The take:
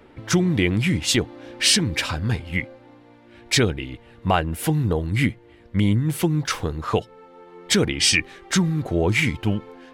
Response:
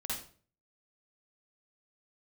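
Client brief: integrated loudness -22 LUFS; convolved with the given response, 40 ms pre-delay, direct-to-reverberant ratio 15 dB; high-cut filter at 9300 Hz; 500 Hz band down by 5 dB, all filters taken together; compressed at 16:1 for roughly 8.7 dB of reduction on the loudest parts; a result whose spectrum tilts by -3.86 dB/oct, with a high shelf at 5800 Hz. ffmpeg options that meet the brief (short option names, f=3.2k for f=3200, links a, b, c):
-filter_complex "[0:a]lowpass=9.3k,equalizer=f=500:t=o:g=-7,highshelf=f=5.8k:g=5.5,acompressor=threshold=-21dB:ratio=16,asplit=2[a][b];[1:a]atrim=start_sample=2205,adelay=40[c];[b][c]afir=irnorm=-1:irlink=0,volume=-17dB[d];[a][d]amix=inputs=2:normalize=0,volume=5dB"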